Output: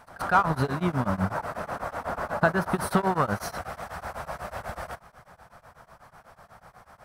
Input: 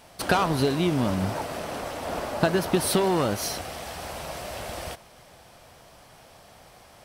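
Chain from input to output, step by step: EQ curve 200 Hz 0 dB, 300 Hz -8 dB, 1400 Hz +7 dB, 2900 Hz -11 dB, 15000 Hz -8 dB; pre-echo 0.131 s -17.5 dB; beating tremolo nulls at 8.1 Hz; gain +2 dB

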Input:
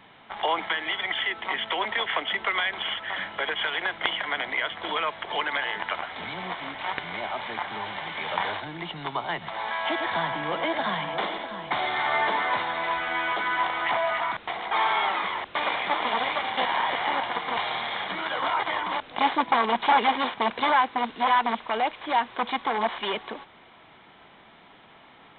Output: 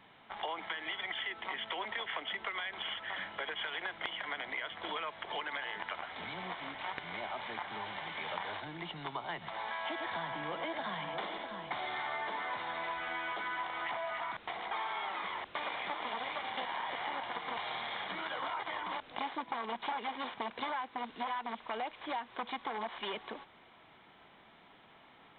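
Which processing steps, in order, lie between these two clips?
compressor 6:1, threshold -27 dBFS, peak gain reduction 11 dB; gain -7.5 dB

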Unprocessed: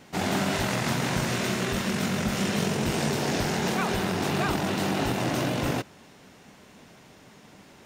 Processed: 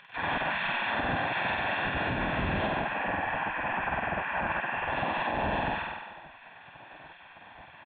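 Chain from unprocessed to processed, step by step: 2.7–4.89 CVSD 16 kbps; reverb RT60 1.4 s, pre-delay 7 ms, DRR 14.5 dB; LPC vocoder at 8 kHz pitch kept; upward compressor, threshold -41 dBFS; LPF 2400 Hz 12 dB/oct; flutter echo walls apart 8.2 m, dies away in 1.3 s; spectral gate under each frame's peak -15 dB weak; comb 1.2 ms, depth 62%; limiter -21 dBFS, peak gain reduction 6 dB; gain +1 dB

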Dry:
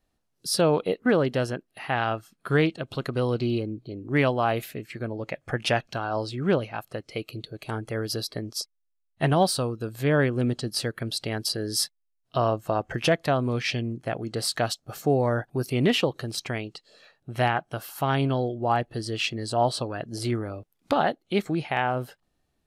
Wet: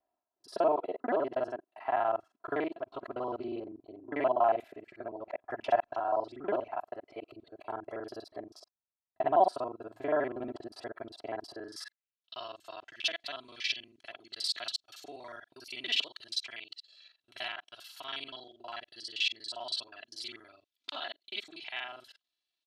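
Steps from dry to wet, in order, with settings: local time reversal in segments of 40 ms; comb 3 ms, depth 67%; band-pass sweep 780 Hz -> 3700 Hz, 11.53–12.26

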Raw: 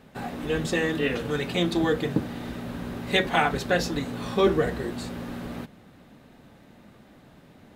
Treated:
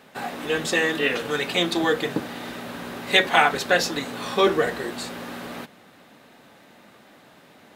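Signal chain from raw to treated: HPF 670 Hz 6 dB/oct; gain +7 dB

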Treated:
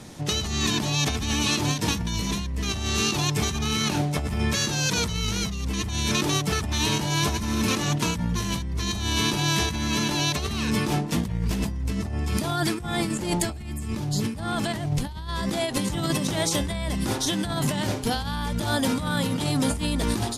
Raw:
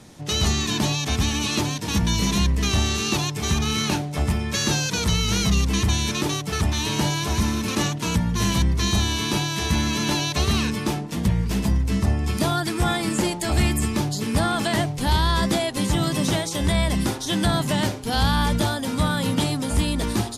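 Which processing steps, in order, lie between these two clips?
12.74–15.28 low shelf 190 Hz +7.5 dB; negative-ratio compressor -26 dBFS, ratio -1; ending taper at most 110 dB/s

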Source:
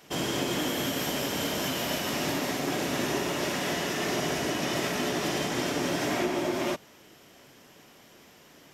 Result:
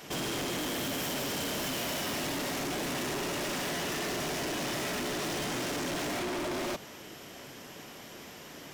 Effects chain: in parallel at +2.5 dB: limiter -27.5 dBFS, peak gain reduction 9 dB; on the sum: overloaded stage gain 32.5 dB

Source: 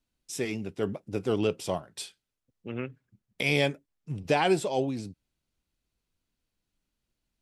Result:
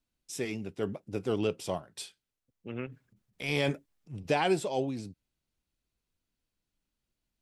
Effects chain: 2.86–4.15 transient shaper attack -10 dB, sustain +8 dB; gain -3 dB

